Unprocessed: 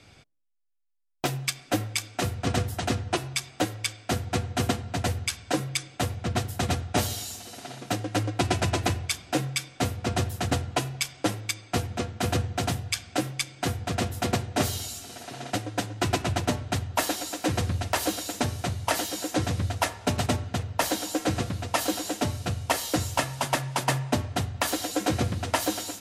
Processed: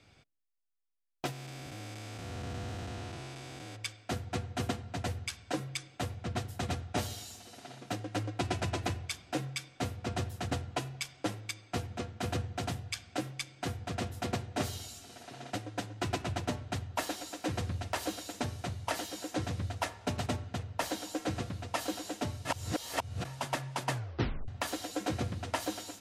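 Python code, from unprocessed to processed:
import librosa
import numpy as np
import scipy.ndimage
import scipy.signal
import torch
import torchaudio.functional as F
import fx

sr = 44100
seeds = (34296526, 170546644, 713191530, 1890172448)

y = fx.spec_blur(x, sr, span_ms=428.0, at=(1.31, 3.75), fade=0.02)
y = fx.edit(y, sr, fx.reverse_span(start_s=22.45, length_s=0.8),
    fx.tape_stop(start_s=23.92, length_s=0.56), tone=tone)
y = fx.high_shelf(y, sr, hz=9100.0, db=-7.5)
y = y * 10.0 ** (-8.0 / 20.0)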